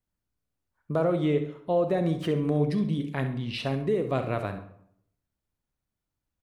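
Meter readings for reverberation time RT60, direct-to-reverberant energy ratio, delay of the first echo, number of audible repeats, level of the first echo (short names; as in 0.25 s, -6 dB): 0.70 s, 7.5 dB, 67 ms, 1, -13.0 dB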